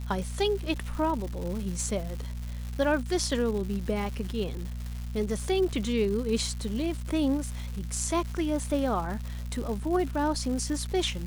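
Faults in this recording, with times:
crackle 340 per s -35 dBFS
hum 60 Hz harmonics 4 -35 dBFS

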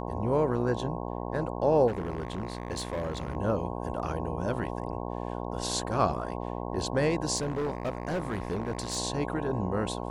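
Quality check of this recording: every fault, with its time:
buzz 60 Hz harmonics 18 -35 dBFS
1.87–3.37 s: clipped -28 dBFS
7.36–8.98 s: clipped -26.5 dBFS

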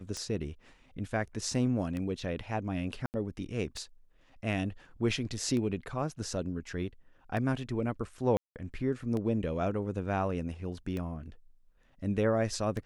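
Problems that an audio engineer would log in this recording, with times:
tick 33 1/3 rpm -24 dBFS
3.06–3.14 s: dropout 79 ms
8.37–8.56 s: dropout 188 ms

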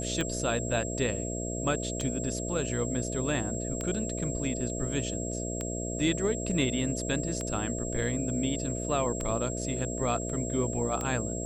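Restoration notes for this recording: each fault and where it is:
buzz 60 Hz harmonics 11 -35 dBFS
tick 33 1/3 rpm -18 dBFS
whine 7.6 kHz -37 dBFS

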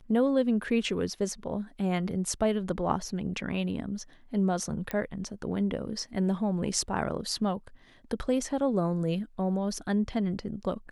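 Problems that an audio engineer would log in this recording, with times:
4.91 s: pop -17 dBFS

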